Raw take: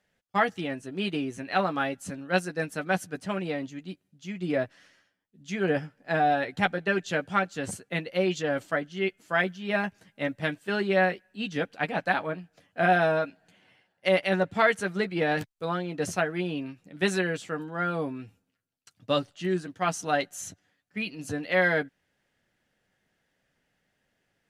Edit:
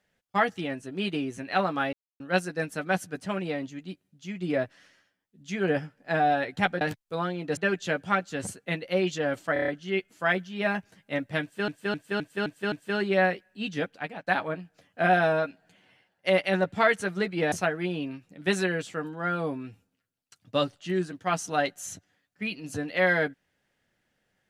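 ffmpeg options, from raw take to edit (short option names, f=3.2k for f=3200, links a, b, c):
-filter_complex "[0:a]asplit=17[a][b][c][d][e][f][g][h][i][j][k][l][m][n][o][p][q];[a]atrim=end=1.93,asetpts=PTS-STARTPTS,afade=t=out:st=1.926:d=0.004:c=hsin[r];[b]atrim=start=1.93:end=2.2,asetpts=PTS-STARTPTS,volume=0[s];[c]atrim=start=2.2:end=6.812,asetpts=PTS-STARTPTS,afade=t=in:d=0.004:c=hsin[t];[d]atrim=start=15.308:end=16.072[u];[e]atrim=start=6.808:end=8.802[v];[f]atrim=start=8.768:end=8.802[w];[g]atrim=start=8.768:end=8.802[x];[h]atrim=start=8.768:end=8.802[y];[i]atrim=start=8.768:end=8.802[z];[j]atrim=start=8.768:end=10.772[aa];[k]atrim=start=10.508:end=10.772[ab];[l]atrim=start=10.508:end=10.772[ac];[m]atrim=start=10.508:end=10.772[ad];[n]atrim=start=10.508:end=10.772[ae];[o]atrim=start=10.508:end=12.06,asetpts=PTS-STARTPTS,afade=t=out:st=1.052:d=0.5:silence=0.133352[af];[p]atrim=start=12.06:end=15.312,asetpts=PTS-STARTPTS,afade=t=in:d=0.004:c=hsin:silence=0.133352[ag];[q]atrim=start=16.068[ah];[r][s][t]concat=n=3:v=0:a=1[ai];[ai][u]acrossfade=d=0.004:c1=hsin:c2=hsin[aj];[aj][v]acrossfade=d=0.004:c1=hsin:c2=hsin[ak];[ak][w]acrossfade=d=0.004:c1=hsin:c2=hsin[al];[al][x]acrossfade=d=0.004:c1=hsin:c2=hsin[am];[am][y]acrossfade=d=0.004:c1=hsin:c2=hsin[an];[an][z]acrossfade=d=0.004:c1=hsin:c2=hsin[ao];[ao][aa]acrossfade=d=0.004:c1=hsin:c2=hsin[ap];[ap][ab]acrossfade=d=0.004:c1=hsin:c2=hsin[aq];[aq][ac]acrossfade=d=0.004:c1=hsin:c2=hsin[ar];[ar][ad]acrossfade=d=0.004:c1=hsin:c2=hsin[as];[as][ae]acrossfade=d=0.004:c1=hsin:c2=hsin[at];[af][ag]concat=n=2:v=0:a=1[au];[at][au]acrossfade=d=0.004:c1=hsin:c2=hsin[av];[av][ah]acrossfade=d=0.004:c1=hsin:c2=hsin"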